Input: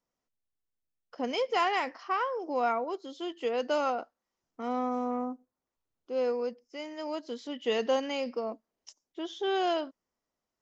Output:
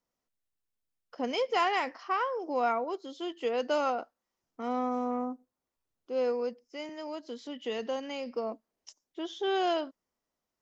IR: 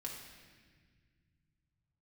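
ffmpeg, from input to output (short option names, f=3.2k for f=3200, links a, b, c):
-filter_complex "[0:a]asettb=1/sr,asplit=3[a][b][c];[a]atrim=end=6.894[d];[b]atrim=start=6.89:end=8.36,asetpts=PTS-STARTPTS,afade=t=in:d=0.004:c=qsin,afade=t=out:st=1.466:d=0.004:c=qsin,acrossover=split=170[e][f];[f]acompressor=threshold=-42dB:ratio=1.5[g];[e][g]amix=inputs=2:normalize=0[h];[c]atrim=start=8.356[i];[d][h]acrossfade=d=0.004:c1=hsin:c2=qsin[j];[j][i]acrossfade=d=0.004:c1=qsin:c2=hsin"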